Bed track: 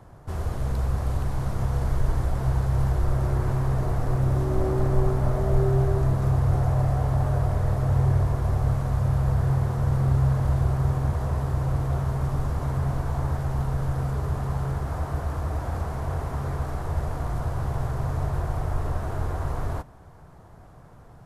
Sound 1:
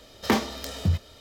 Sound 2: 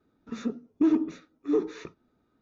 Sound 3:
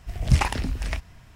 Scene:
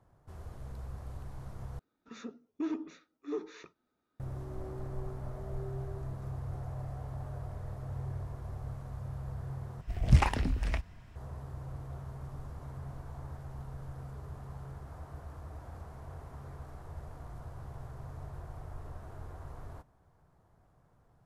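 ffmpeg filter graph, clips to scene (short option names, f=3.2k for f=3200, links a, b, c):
-filter_complex "[0:a]volume=-17.5dB[a];[2:a]lowshelf=f=430:g=-10.5[b];[3:a]highshelf=f=2.9k:g=-9[c];[a]asplit=3[d][e][f];[d]atrim=end=1.794[g];[b]atrim=end=2.41,asetpts=PTS-STARTPTS,volume=-5.5dB[h];[e]atrim=start=4.196:end=9.814[i];[c]atrim=end=1.35,asetpts=PTS-STARTPTS,volume=-3dB[j];[f]atrim=start=11.156[k];[g][h]acrossfade=d=0.004:c1=hsin:c2=hsin[l];[l][i]acrossfade=d=0.004:c1=hsin:c2=hsin[m];[m][j]acrossfade=d=0.004:c1=hsin:c2=hsin[n];[n][k]acrossfade=d=0.004:c1=hsin:c2=hsin"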